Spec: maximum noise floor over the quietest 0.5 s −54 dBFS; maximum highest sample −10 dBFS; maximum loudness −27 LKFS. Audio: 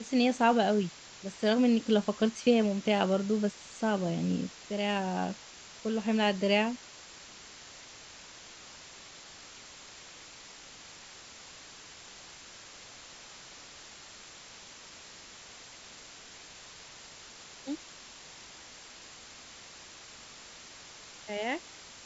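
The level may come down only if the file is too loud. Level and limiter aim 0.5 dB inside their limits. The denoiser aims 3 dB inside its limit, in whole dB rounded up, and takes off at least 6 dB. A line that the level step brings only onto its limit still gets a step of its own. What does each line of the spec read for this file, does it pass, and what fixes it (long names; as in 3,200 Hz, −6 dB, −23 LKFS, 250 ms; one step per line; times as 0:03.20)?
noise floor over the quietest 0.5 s −50 dBFS: out of spec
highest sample −11.5 dBFS: in spec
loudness −29.5 LKFS: in spec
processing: broadband denoise 7 dB, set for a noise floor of −50 dBFS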